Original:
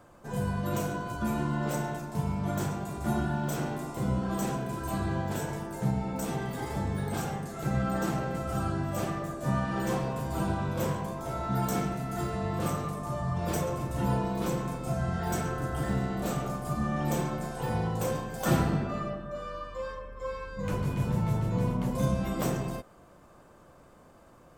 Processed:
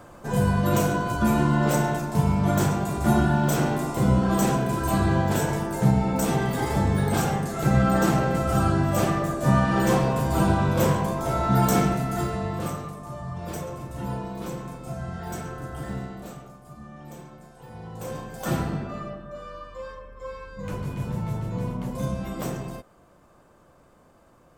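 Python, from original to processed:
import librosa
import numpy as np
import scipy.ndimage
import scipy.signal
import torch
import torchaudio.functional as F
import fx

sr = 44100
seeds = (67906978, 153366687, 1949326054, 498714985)

y = fx.gain(x, sr, db=fx.line((11.91, 9.0), (12.98, -3.0), (16.0, -3.0), (16.54, -13.0), (17.7, -13.0), (18.2, -1.0)))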